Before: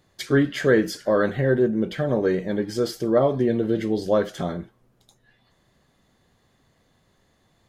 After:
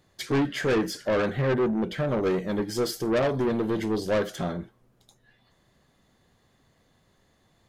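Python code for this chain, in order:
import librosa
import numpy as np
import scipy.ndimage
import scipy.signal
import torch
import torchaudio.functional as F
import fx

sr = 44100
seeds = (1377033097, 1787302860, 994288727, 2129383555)

y = 10.0 ** (-23.0 / 20.0) * np.tanh(x / 10.0 ** (-23.0 / 20.0))
y = fx.high_shelf(y, sr, hz=6800.0, db=7.0, at=(2.23, 4.36))
y = fx.upward_expand(y, sr, threshold_db=-32.0, expansion=1.5)
y = y * 10.0 ** (3.0 / 20.0)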